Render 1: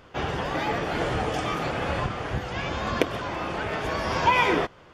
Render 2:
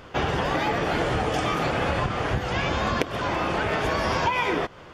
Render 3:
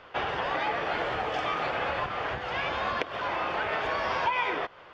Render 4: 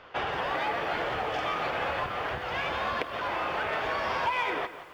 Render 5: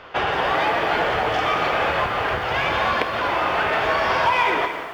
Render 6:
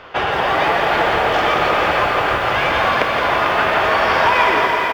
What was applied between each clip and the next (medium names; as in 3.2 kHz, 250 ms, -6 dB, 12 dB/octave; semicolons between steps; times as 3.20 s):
compression 10:1, threshold -27 dBFS, peak gain reduction 12.5 dB; trim +6.5 dB
three-band isolator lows -13 dB, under 470 Hz, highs -23 dB, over 4.5 kHz; trim -2.5 dB
in parallel at -7 dB: hard clipper -27 dBFS, distortion -12 dB; on the sum: bit-crushed delay 173 ms, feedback 35%, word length 8-bit, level -13 dB; trim -3.5 dB
gated-style reverb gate 320 ms flat, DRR 5.5 dB; trim +8.5 dB
delay 446 ms -7.5 dB; bit-crushed delay 168 ms, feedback 80%, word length 8-bit, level -8 dB; trim +3 dB